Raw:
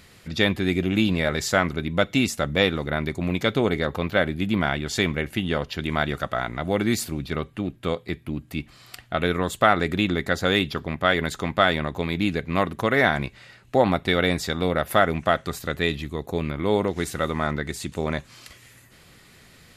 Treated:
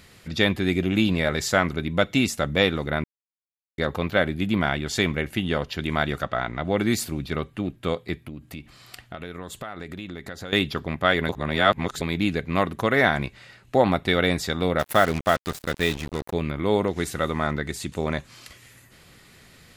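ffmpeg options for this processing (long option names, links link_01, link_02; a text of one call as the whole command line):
ffmpeg -i in.wav -filter_complex "[0:a]asettb=1/sr,asplit=3[link_01][link_02][link_03];[link_01]atrim=end=6.234[link_04];[link_02]atrim=start=6.23:end=6.78,asetpts=PTS-STARTPTS,afade=type=in:duration=0.004:curve=qsin,afade=type=out:start_time=0.546:duration=0.004:curve=qsin,lowpass=5100[link_05];[link_03]atrim=start=6.776[link_06];[link_04][link_05]acrossfade=duration=0.004:curve1=hsin:curve2=qsin[link_07];[link_07][link_06]acrossfade=duration=0.004:curve1=qsin:curve2=hsin,asettb=1/sr,asplit=3[link_08][link_09][link_10];[link_08]atrim=end=8.184[link_11];[link_09]atrim=start=8.18:end=10.53,asetpts=PTS-STARTPTS,afade=type=in:duration=0.004:curve=qsin,afade=type=out:start_time=2.346:duration=0.004:curve=qsin,acompressor=threshold=-33dB:ratio=5:attack=3.2:release=140:knee=1:detection=peak[link_12];[link_10]atrim=start=10.526[link_13];[link_11][link_12]acrossfade=duration=0.004:curve1=hsin:curve2=qsin[link_14];[link_14][link_13]acrossfade=duration=0.004:curve1=qsin:curve2=hsin,asettb=1/sr,asplit=3[link_15][link_16][link_17];[link_15]atrim=end=14.794[link_18];[link_16]atrim=start=14.79:end=16.33,asetpts=PTS-STARTPTS,afade=type=in:duration=0.004:curve=qsin,afade=type=out:start_time=1.536:duration=0.004:curve=qsin,acrusher=bits=4:mix=0:aa=0.5[link_19];[link_17]atrim=start=16.326[link_20];[link_18][link_19]acrossfade=duration=0.004:curve1=hsin:curve2=qsin[link_21];[link_21][link_20]acrossfade=duration=0.004:curve1=qsin:curve2=hsin,asplit=5[link_22][link_23][link_24][link_25][link_26];[link_22]atrim=end=3.04,asetpts=PTS-STARTPTS,afade=type=out:start_time=3.036:duration=0.004:curve=hsin[link_27];[link_23]atrim=start=3.04:end=3.78,asetpts=PTS-STARTPTS,volume=0[link_28];[link_24]atrim=start=3.78:end=11.292,asetpts=PTS-STARTPTS,afade=type=in:duration=0.004:curve=hsin[link_29];[link_25]atrim=start=11.288:end=12.012,asetpts=PTS-STARTPTS,areverse[link_30];[link_26]atrim=start=12.008[link_31];[link_27][link_28][link_29]concat=n=3:v=0:a=1[link_32];[link_32][link_30]acrossfade=duration=0.004:curve1=hsin:curve2=hsin[link_33];[link_33][link_31]acrossfade=duration=0.004:curve1=hsin:curve2=hsin" out.wav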